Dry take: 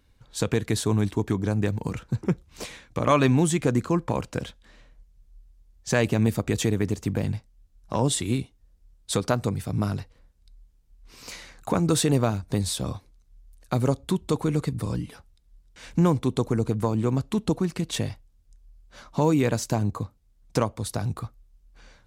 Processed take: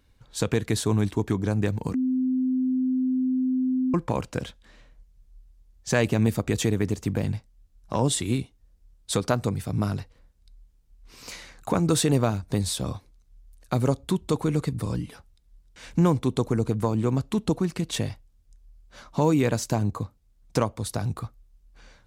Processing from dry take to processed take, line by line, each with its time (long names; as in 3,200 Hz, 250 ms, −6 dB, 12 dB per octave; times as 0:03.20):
0:01.94–0:03.94: beep over 257 Hz −21 dBFS